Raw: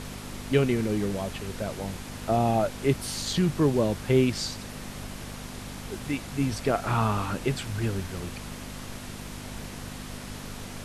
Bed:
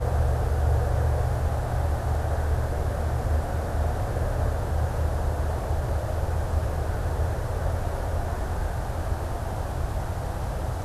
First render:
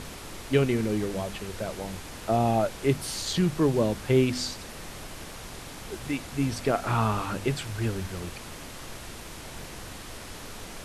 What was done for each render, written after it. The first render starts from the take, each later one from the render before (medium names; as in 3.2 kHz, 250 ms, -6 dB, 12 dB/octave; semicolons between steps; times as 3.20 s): de-hum 50 Hz, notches 5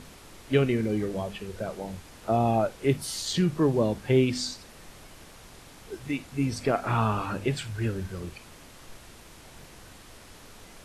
noise print and reduce 8 dB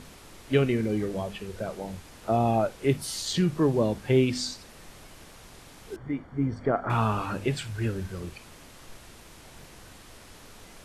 5.96–6.90 s: Savitzky-Golay filter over 41 samples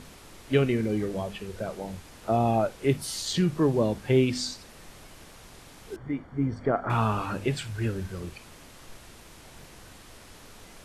no audible change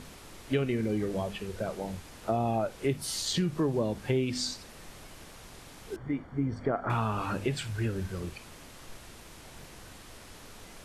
compression 3:1, threshold -26 dBFS, peak gain reduction 8 dB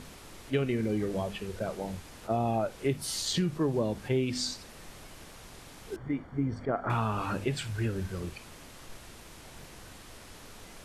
attacks held to a fixed rise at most 420 dB/s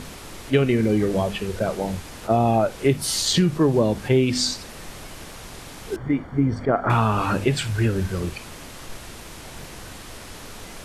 trim +10 dB